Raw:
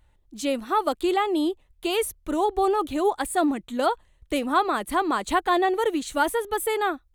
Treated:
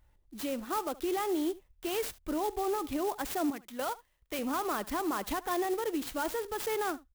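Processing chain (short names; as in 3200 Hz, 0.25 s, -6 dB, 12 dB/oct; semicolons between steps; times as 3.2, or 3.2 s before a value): 3.5–4.39 low shelf 480 Hz -12 dB; limiter -20 dBFS, peak gain reduction 10.5 dB; on a send: echo 72 ms -19.5 dB; on the sum: clock jitter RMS 0.047 ms; gain -4.5 dB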